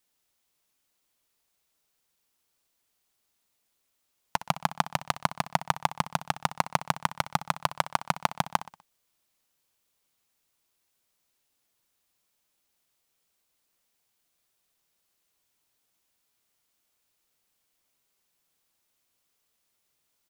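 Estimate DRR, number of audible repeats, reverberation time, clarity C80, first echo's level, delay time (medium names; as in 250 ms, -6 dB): no reverb, 4, no reverb, no reverb, -15.5 dB, 62 ms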